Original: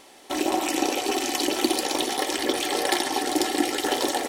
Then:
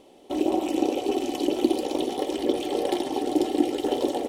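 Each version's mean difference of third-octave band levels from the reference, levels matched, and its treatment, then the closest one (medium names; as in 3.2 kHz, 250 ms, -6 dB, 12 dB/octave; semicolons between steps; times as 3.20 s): 8.0 dB: FFT filter 520 Hz 0 dB, 1.7 kHz -20 dB, 3 kHz -9 dB, 4.6 kHz -16 dB; trim +2.5 dB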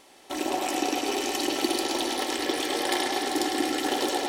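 2.0 dB: bucket-brigade echo 104 ms, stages 4096, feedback 76%, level -5 dB; trim -4.5 dB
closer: second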